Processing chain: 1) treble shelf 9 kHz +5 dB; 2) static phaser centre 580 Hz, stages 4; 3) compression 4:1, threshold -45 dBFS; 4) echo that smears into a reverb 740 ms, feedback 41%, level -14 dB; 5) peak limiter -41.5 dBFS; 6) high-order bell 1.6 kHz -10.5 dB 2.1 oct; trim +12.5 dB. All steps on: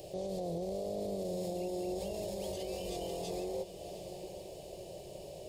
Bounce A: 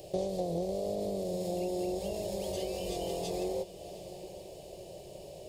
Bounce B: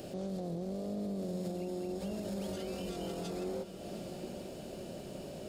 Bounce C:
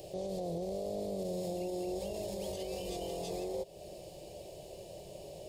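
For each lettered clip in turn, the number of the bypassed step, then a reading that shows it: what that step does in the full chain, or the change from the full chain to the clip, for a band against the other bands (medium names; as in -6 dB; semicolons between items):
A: 5, mean gain reduction 2.0 dB; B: 2, 250 Hz band +6.0 dB; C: 4, momentary loudness spread change +1 LU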